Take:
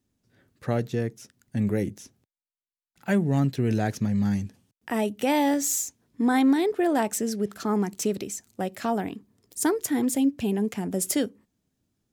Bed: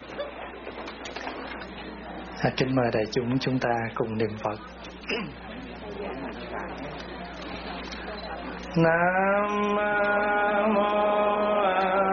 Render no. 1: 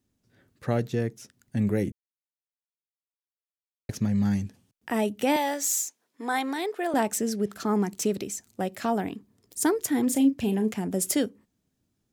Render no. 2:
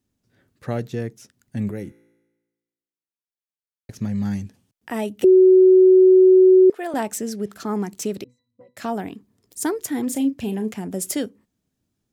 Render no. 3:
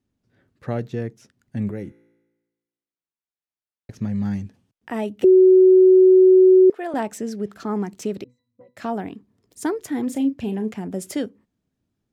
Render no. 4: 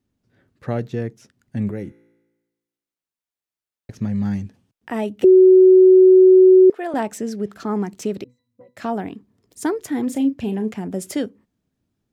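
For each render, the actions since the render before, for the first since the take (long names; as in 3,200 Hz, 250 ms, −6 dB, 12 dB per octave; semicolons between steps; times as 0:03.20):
0:01.92–0:03.89: silence; 0:05.36–0:06.94: high-pass filter 550 Hz; 0:10.04–0:10.76: double-tracking delay 37 ms −10 dB
0:01.71–0:03.99: tuned comb filter 57 Hz, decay 1.2 s, mix 50%; 0:05.24–0:06.70: beep over 373 Hz −8 dBFS; 0:08.24–0:08.77: resonances in every octave B, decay 0.25 s
low-pass filter 2,900 Hz 6 dB per octave
level +2 dB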